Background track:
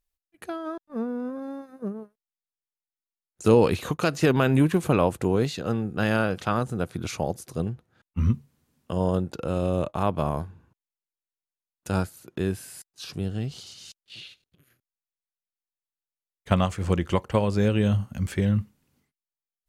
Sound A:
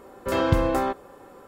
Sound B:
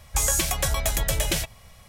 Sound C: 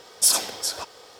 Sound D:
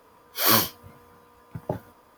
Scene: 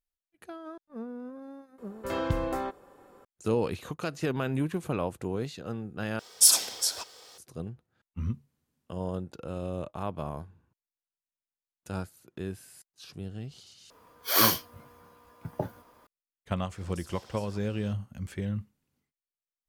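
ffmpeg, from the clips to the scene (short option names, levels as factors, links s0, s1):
-filter_complex "[3:a]asplit=2[s0][s1];[0:a]volume=0.335[s2];[s0]highshelf=f=2300:g=9.5[s3];[s1]acompressor=threshold=0.0141:ratio=6:attack=3.2:release=140:knee=1:detection=peak[s4];[s2]asplit=3[s5][s6][s7];[s5]atrim=end=6.194[s8];[s3]atrim=end=1.19,asetpts=PTS-STARTPTS,volume=0.355[s9];[s6]atrim=start=7.376:end=13.904[s10];[4:a]atrim=end=2.17,asetpts=PTS-STARTPTS,volume=0.75[s11];[s7]atrim=start=16.066[s12];[1:a]atrim=end=1.47,asetpts=PTS-STARTPTS,volume=0.398,afade=t=in:d=0.004:c=hsin,afade=t=out:st=1.466:d=0.004:c=hsin,adelay=1780[s13];[s4]atrim=end=1.19,asetpts=PTS-STARTPTS,volume=0.237,afade=t=in:d=0.004:c=hsin,afade=t=out:st=1.186:d=0.004:c=hsin,adelay=16740[s14];[s8][s9]acrossfade=d=0.004:c1=hsin:c2=hsin[s15];[s15][s10]acrossfade=d=0.004:c1=hsin:c2=hsin[s16];[s16][s11]acrossfade=d=0.004:c1=hsin:c2=hsin[s17];[s17][s12]acrossfade=d=0.004:c1=hsin:c2=hsin[s18];[s18][s13][s14]amix=inputs=3:normalize=0"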